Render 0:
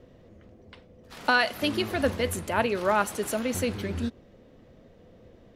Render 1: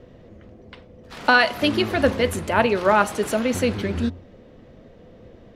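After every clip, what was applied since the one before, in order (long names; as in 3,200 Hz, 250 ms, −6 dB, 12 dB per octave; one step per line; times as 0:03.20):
high-shelf EQ 8,000 Hz −11 dB
hum removal 89.07 Hz, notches 14
level +7 dB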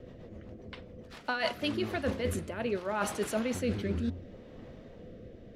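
reversed playback
downward compressor 12 to 1, threshold −26 dBFS, peak gain reduction 16 dB
reversed playback
rotating-speaker cabinet horn 7.5 Hz, later 0.7 Hz, at 0:01.19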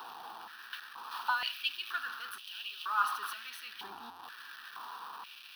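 converter with a step at zero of −32 dBFS
phaser with its sweep stopped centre 2,100 Hz, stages 6
high-pass on a step sequencer 2.1 Hz 820–2,900 Hz
level −5 dB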